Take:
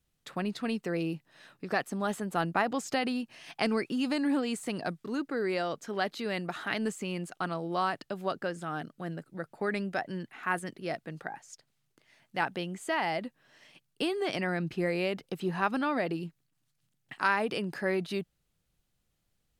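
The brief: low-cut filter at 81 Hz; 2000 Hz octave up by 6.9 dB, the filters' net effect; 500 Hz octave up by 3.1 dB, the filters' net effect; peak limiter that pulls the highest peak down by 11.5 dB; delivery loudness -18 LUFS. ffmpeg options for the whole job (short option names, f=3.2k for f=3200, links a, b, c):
-af "highpass=81,equalizer=f=500:t=o:g=3.5,equalizer=f=2k:t=o:g=8.5,volume=14dB,alimiter=limit=-5.5dB:level=0:latency=1"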